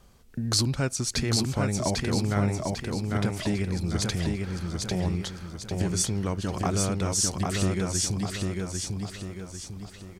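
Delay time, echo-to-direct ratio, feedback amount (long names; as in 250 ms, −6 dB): 798 ms, −2.0 dB, 44%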